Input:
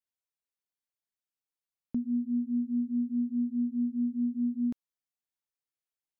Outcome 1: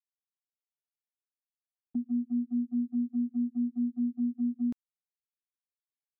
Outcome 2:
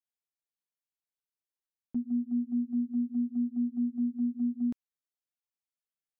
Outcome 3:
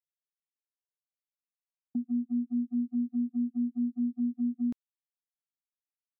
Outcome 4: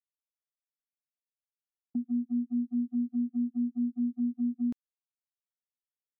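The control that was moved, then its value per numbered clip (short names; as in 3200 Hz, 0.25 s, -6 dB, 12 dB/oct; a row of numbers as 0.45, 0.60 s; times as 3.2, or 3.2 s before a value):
gate, range: -23, -7, -49, -36 dB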